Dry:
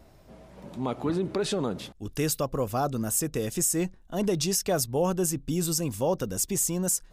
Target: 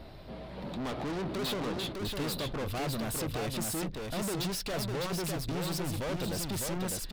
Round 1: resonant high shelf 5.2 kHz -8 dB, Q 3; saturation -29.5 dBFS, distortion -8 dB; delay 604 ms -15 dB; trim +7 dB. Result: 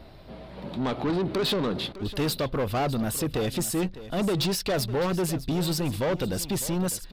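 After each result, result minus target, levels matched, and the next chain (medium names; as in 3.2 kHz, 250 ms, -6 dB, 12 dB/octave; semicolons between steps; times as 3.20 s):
echo-to-direct -11 dB; saturation: distortion -5 dB
resonant high shelf 5.2 kHz -8 dB, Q 3; saturation -29.5 dBFS, distortion -8 dB; delay 604 ms -4 dB; trim +7 dB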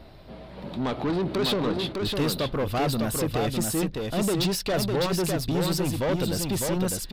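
saturation: distortion -5 dB
resonant high shelf 5.2 kHz -8 dB, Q 3; saturation -40.5 dBFS, distortion -3 dB; delay 604 ms -4 dB; trim +7 dB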